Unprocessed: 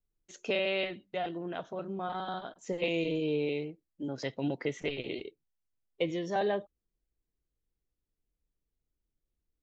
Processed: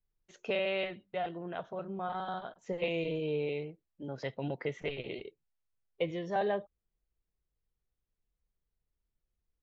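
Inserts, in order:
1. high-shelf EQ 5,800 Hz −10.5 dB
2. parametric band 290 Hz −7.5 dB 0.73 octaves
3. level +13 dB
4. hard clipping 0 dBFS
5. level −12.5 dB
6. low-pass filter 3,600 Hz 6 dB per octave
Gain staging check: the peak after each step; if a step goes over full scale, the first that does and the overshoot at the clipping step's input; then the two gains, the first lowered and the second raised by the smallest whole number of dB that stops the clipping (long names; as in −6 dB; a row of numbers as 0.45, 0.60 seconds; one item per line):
−17.0, −18.5, −5.5, −5.5, −18.0, −19.0 dBFS
no step passes full scale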